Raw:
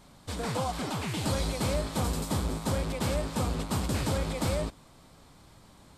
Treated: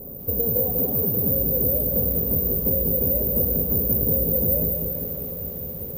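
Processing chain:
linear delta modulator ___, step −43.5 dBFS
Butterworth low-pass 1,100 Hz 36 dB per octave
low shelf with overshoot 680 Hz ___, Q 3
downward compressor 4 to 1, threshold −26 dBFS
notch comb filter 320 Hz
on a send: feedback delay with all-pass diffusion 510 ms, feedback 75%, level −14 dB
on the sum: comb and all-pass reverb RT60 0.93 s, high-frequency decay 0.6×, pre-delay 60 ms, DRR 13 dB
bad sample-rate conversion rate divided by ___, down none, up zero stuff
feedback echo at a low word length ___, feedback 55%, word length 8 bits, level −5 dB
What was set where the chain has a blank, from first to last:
32 kbit/s, +10 dB, 3×, 194 ms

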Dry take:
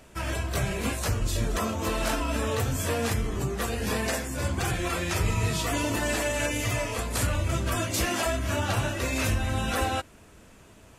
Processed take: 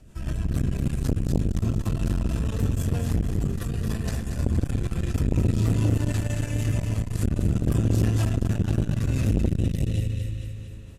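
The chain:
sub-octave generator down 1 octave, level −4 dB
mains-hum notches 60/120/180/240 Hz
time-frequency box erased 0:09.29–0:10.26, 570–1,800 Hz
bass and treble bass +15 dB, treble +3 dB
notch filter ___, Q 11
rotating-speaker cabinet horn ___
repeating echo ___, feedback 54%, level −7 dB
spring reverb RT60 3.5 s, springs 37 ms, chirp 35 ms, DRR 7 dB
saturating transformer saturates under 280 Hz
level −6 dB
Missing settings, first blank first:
2,200 Hz, 6.3 Hz, 230 ms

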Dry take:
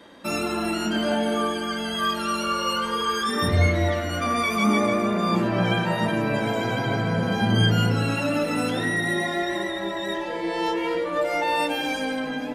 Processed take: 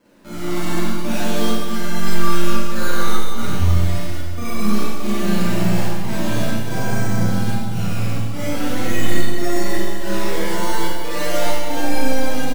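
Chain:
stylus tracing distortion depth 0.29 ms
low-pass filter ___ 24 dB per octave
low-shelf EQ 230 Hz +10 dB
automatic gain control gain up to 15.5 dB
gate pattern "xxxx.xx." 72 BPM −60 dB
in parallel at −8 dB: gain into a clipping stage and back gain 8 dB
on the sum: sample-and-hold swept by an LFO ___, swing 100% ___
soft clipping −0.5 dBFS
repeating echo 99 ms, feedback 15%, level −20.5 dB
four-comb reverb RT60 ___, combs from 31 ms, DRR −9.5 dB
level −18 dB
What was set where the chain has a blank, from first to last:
3,300 Hz, 12×, 0.4 Hz, 1.7 s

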